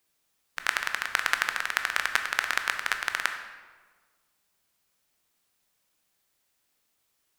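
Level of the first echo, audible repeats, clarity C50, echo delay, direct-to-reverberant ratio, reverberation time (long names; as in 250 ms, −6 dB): no echo audible, no echo audible, 8.0 dB, no echo audible, 6.0 dB, 1.5 s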